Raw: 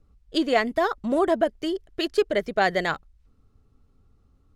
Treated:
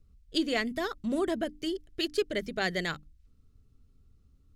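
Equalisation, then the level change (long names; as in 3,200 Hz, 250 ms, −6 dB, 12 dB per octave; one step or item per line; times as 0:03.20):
parametric band 820 Hz −14 dB 2 octaves
mains-hum notches 50/100/150/200/250/300 Hz
0.0 dB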